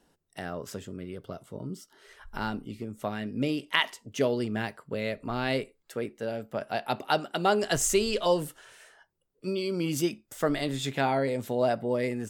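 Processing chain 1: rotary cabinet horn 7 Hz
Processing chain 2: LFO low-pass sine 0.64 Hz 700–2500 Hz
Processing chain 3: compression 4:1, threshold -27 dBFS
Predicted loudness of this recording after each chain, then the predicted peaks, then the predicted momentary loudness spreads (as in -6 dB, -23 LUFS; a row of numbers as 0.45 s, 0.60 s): -32.5 LUFS, -28.0 LUFS, -33.5 LUFS; -10.0 dBFS, -3.5 dBFS, -10.5 dBFS; 14 LU, 15 LU, 10 LU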